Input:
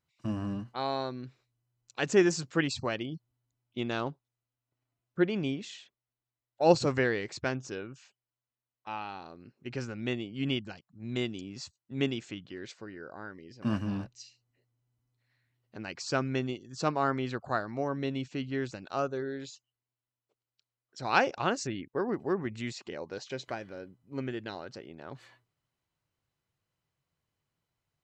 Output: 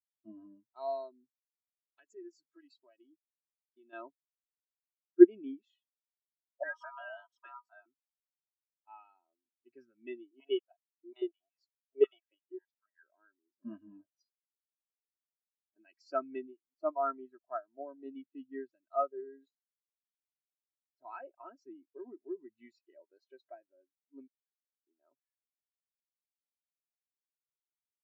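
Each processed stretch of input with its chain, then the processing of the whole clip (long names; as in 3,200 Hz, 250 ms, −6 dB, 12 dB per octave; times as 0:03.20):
0:01.99–0:03.93: high-pass filter 190 Hz 6 dB per octave + downward compressor 5 to 1, threshold −36 dBFS
0:06.63–0:07.86: ring modulation 1,100 Hz + downward compressor 8 to 1, threshold −29 dBFS
0:10.31–0:13.03: mu-law and A-law mismatch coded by A + high-pass on a step sequencer 11 Hz 350–1,600 Hz
0:16.48–0:18.06: mu-law and A-law mismatch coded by A + high-shelf EQ 2,900 Hz −7.5 dB
0:19.48–0:22.51: low-pass filter 3,000 Hz 6 dB per octave + downward compressor 5 to 1, threshold −28 dBFS
0:24.27–0:24.87: high-shelf EQ 2,000 Hz −11.5 dB + downward compressor 16 to 1, threshold −43 dBFS + flat-topped band-pass 2,100 Hz, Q 1.7
whole clip: high-pass filter 570 Hz 6 dB per octave; comb filter 3.1 ms, depth 53%; every bin expanded away from the loudest bin 2.5 to 1; level +8 dB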